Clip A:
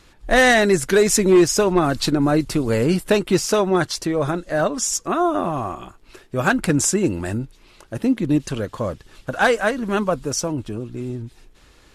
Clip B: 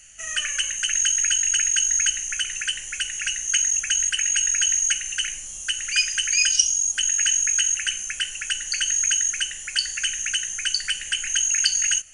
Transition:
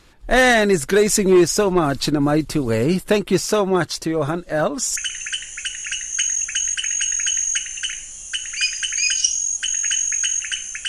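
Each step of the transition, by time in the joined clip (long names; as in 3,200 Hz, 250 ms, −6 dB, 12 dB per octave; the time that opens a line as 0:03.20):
clip A
0:04.96: continue with clip B from 0:02.31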